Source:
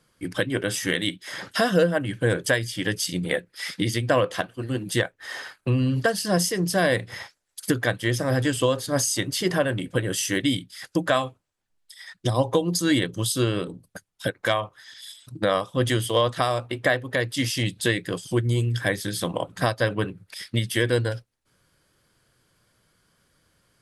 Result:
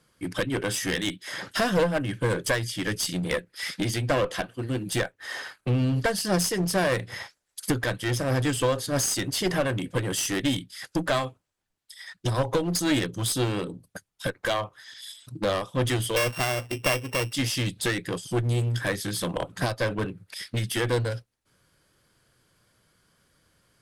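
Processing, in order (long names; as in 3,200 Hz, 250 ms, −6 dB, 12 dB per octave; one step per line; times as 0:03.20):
0:16.16–0:17.33: samples sorted by size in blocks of 16 samples
asymmetric clip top −25 dBFS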